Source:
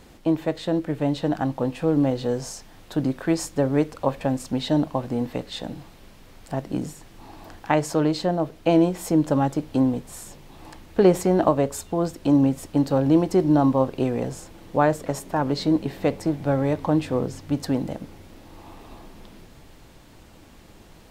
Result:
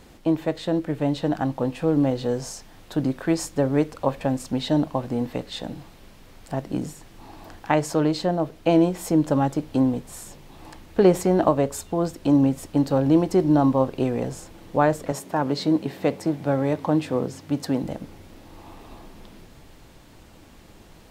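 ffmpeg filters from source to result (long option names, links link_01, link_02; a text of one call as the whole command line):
ffmpeg -i in.wav -filter_complex "[0:a]asettb=1/sr,asplit=3[link_01][link_02][link_03];[link_01]atrim=end=15.124[link_04];[link_02]atrim=start=15.12:end=17.84,asetpts=PTS-STARTPTS,afade=type=in:duration=0.004:curve=qsin,afade=type=out:start_time=2.716:duration=0.004:curve=qsin,highpass=120[link_05];[link_03]atrim=start=17.836[link_06];[link_04][link_05]acrossfade=duration=0.004:curve1=hsin:curve2=qsin[link_07];[link_07][link_06]acrossfade=duration=0.004:curve1=qsin:curve2=hsin" out.wav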